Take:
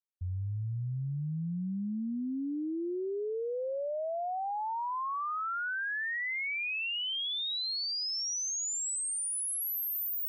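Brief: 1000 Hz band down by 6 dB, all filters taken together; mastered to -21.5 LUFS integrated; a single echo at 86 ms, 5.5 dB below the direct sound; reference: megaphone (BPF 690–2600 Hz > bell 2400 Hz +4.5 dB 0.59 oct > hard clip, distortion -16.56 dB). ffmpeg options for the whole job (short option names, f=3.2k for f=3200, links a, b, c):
-af "highpass=690,lowpass=2.6k,equalizer=f=1k:t=o:g=-6.5,equalizer=f=2.4k:t=o:w=0.59:g=4.5,aecho=1:1:86:0.531,asoftclip=type=hard:threshold=-31.5dB,volume=15dB"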